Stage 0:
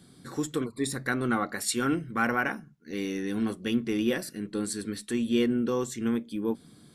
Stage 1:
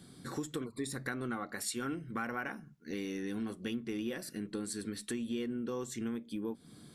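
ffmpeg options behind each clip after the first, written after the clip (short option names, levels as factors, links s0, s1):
-af "acompressor=threshold=0.0158:ratio=4"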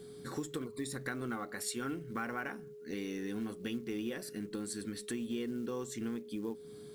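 -af "aeval=exprs='val(0)+0.00447*sin(2*PI*420*n/s)':c=same,acrusher=bits=7:mode=log:mix=0:aa=0.000001,volume=0.891"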